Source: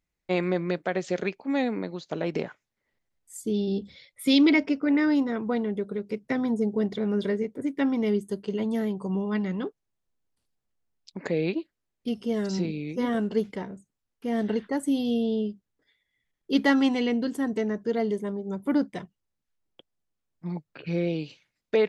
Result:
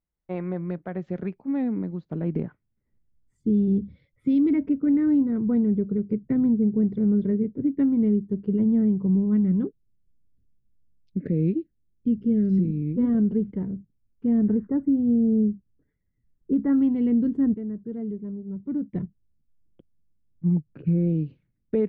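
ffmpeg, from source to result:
ffmpeg -i in.wav -filter_complex "[0:a]asettb=1/sr,asplit=3[link_01][link_02][link_03];[link_01]atrim=end=9.674[link_04];[link_02]atrim=start=9.67:end=12.82,asetpts=PTS-STARTPTS,afade=type=in:duration=0.004:curve=qsin,afade=type=out:start_time=3.146:duration=0.004:curve=qsin,asuperstop=centerf=930:order=4:qfactor=0.93[link_05];[link_03]atrim=start=12.816[link_06];[link_04][link_05]acrossfade=duration=0.004:curve1=hsin:curve2=qsin[link_07];[link_07][link_06]acrossfade=duration=0.004:curve1=qsin:curve2=hsin,asettb=1/sr,asplit=3[link_08][link_09][link_10];[link_08]atrim=end=14.384[link_11];[link_09]atrim=start=14.38:end=16.76,asetpts=PTS-STARTPTS,afade=type=in:duration=0.004:curve=qsin,afade=type=out:start_time=2.376:duration=0.004:curve=qsin,highshelf=frequency=2200:width_type=q:width=1.5:gain=-12[link_12];[link_10]atrim=start=16.756[link_13];[link_11][link_12]acrossfade=duration=0.004:curve1=hsin:curve2=qsin[link_14];[link_14][link_13]acrossfade=duration=0.004:curve1=qsin:curve2=hsin,asplit=3[link_15][link_16][link_17];[link_15]atrim=end=17.542[link_18];[link_16]atrim=start=17.538:end=18.932,asetpts=PTS-STARTPTS,volume=-10.5dB[link_19];[link_17]atrim=start=18.928[link_20];[link_18][link_19]acrossfade=duration=0.004:curve1=hsin:curve2=hsin[link_21];[link_21][link_20]acrossfade=duration=0.004:curve1=hsin:curve2=hsin,lowpass=1300,asubboost=boost=12:cutoff=220,alimiter=limit=-10dB:level=0:latency=1:release=475,volume=-5dB" out.wav

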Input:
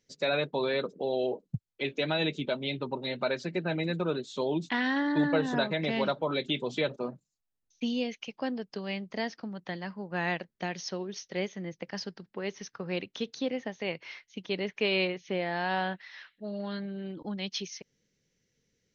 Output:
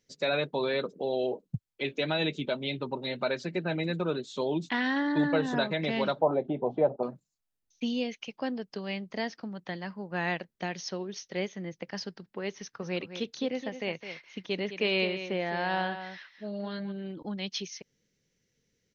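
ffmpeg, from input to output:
ffmpeg -i in.wav -filter_complex "[0:a]asettb=1/sr,asplit=3[link_01][link_02][link_03];[link_01]atrim=end=6.214[link_04];[link_02]atrim=start=6.21:end=7.03,asetpts=PTS-STARTPTS,afade=type=in:duration=0.004:curve=qsin,afade=type=out:start_time=0.816:duration=0.004:curve=qsin,lowpass=frequency=760:width_type=q:width=4.5[link_05];[link_03]atrim=start=7.026[link_06];[link_04][link_05]acrossfade=duration=0.004:curve1=hsin:curve2=qsin[link_07];[link_07][link_06]acrossfade=duration=0.004:curve1=qsin:curve2=hsin,asplit=3[link_08][link_09][link_10];[link_08]afade=type=out:start_time=12.81:duration=0.02[link_11];[link_09]aecho=1:1:211:0.299,afade=type=in:start_time=12.81:duration=0.02,afade=type=out:start_time=16.91:duration=0.02[link_12];[link_10]afade=type=in:start_time=16.91:duration=0.02[link_13];[link_11][link_12][link_13]amix=inputs=3:normalize=0" out.wav

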